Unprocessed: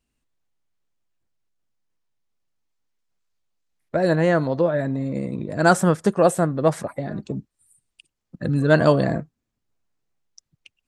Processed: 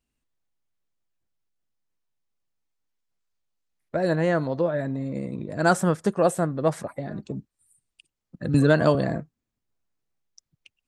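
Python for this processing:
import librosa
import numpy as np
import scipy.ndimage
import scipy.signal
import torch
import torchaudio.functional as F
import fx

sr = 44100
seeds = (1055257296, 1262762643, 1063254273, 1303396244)

y = fx.band_squash(x, sr, depth_pct=100, at=(8.54, 8.95))
y = F.gain(torch.from_numpy(y), -4.0).numpy()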